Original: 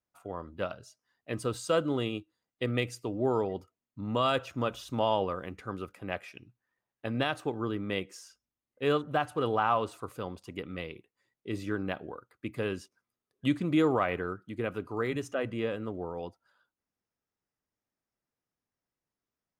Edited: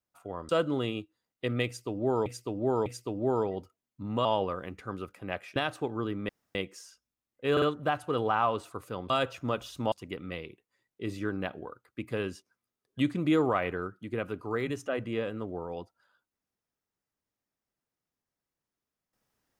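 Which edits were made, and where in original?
0.49–1.67 cut
2.84–3.44 loop, 3 plays
4.23–5.05 move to 10.38
6.36–7.2 cut
7.93 insert room tone 0.26 s
8.9 stutter 0.05 s, 3 plays

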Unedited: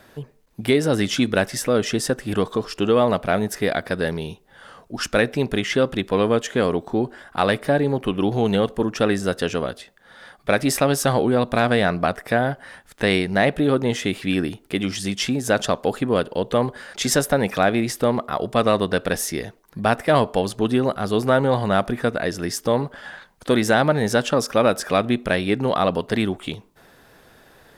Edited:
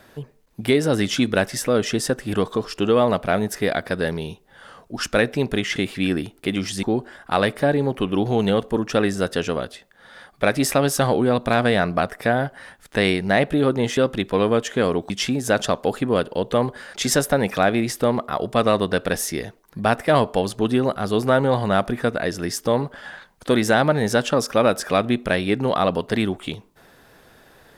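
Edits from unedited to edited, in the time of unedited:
5.76–6.89 swap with 14.03–15.1

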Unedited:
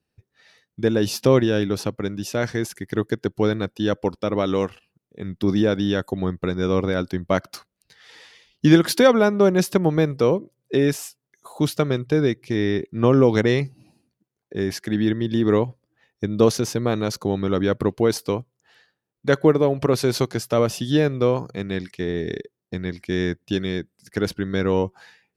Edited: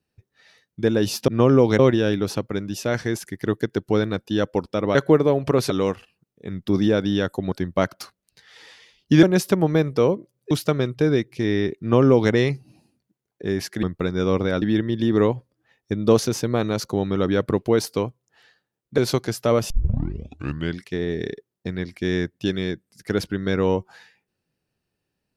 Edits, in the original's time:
6.26–7.05 move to 14.94
8.76–9.46 cut
10.74–11.62 cut
12.92–13.43 copy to 1.28
19.3–20.05 move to 4.44
20.77 tape start 1.10 s

